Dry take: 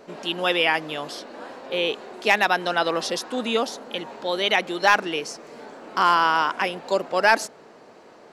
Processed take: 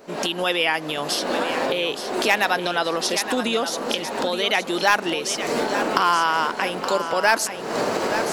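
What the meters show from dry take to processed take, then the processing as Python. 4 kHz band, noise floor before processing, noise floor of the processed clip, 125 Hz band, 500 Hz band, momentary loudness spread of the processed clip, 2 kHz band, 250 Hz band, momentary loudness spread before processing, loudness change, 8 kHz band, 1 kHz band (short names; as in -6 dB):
+2.5 dB, -49 dBFS, -32 dBFS, +3.5 dB, +2.5 dB, 6 LU, +0.5 dB, +4.0 dB, 16 LU, +0.5 dB, +8.5 dB, +0.5 dB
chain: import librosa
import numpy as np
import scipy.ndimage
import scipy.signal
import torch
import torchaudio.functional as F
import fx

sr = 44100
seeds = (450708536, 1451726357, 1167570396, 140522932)

p1 = fx.recorder_agc(x, sr, target_db=-14.5, rise_db_per_s=62.0, max_gain_db=30)
p2 = fx.high_shelf(p1, sr, hz=8500.0, db=11.0)
p3 = p2 + fx.echo_feedback(p2, sr, ms=871, feedback_pct=32, wet_db=-9.5, dry=0)
y = p3 * librosa.db_to_amplitude(-1.0)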